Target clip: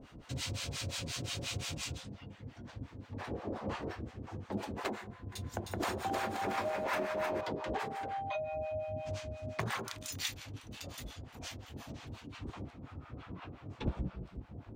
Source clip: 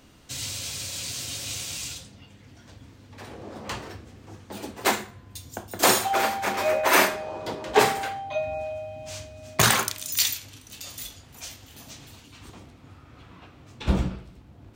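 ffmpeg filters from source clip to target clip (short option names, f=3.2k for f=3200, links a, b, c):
-filter_complex "[0:a]asoftclip=type=tanh:threshold=-13dB,lowpass=f=1.5k:p=1,acompressor=threshold=-35dB:ratio=16,acrossover=split=680[a][b];[a]aeval=exprs='val(0)*(1-1/2+1/2*cos(2*PI*5.7*n/s))':c=same[c];[b]aeval=exprs='val(0)*(1-1/2-1/2*cos(2*PI*5.7*n/s))':c=same[d];[c][d]amix=inputs=2:normalize=0,asettb=1/sr,asplit=3[e][f][g];[e]atrim=end=5.014[h];[f]atrim=start=5.01:end=7.41,asetpts=PTS-STARTPTS,afade=t=in:d=0.004:c=qsin,afade=t=out:st=2.396:d=0.004:c=qsin,aecho=1:1:310|527|678.9|785.2|859.7:0.631|0.398|0.251|0.158|0.1,atrim=end_sample=105840[i];[g]atrim=start=7.406[j];[h][i]acrossfade=d=0.004:c1=hsin:c2=qsin[k];[k][j]acrossfade=d=0.004:c1=qsin:c2=hsin,volume=6.5dB"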